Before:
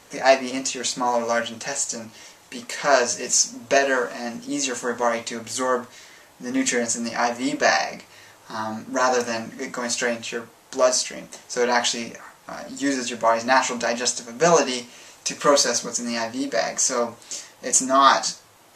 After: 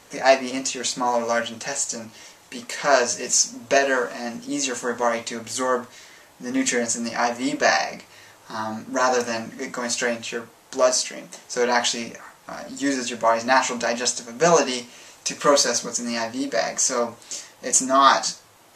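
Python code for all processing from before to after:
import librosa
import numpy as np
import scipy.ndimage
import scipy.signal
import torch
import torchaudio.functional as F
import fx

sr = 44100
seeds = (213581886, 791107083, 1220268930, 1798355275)

y = fx.chain(x, sr, fx.highpass(hz=140.0, slope=24),
    fx.hum_notches(base_hz=60, count=9), at=(10.91, 11.45))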